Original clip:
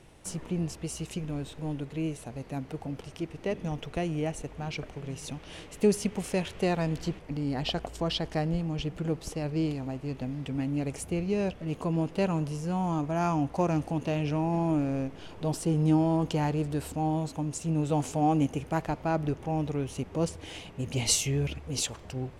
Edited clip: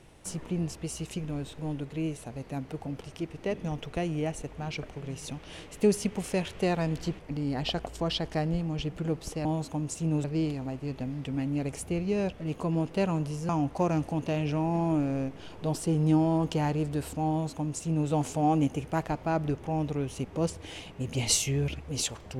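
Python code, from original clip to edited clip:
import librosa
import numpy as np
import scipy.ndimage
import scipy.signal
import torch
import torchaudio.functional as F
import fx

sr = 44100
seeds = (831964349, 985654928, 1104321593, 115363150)

y = fx.edit(x, sr, fx.cut(start_s=12.7, length_s=0.58),
    fx.duplicate(start_s=17.09, length_s=0.79, to_s=9.45), tone=tone)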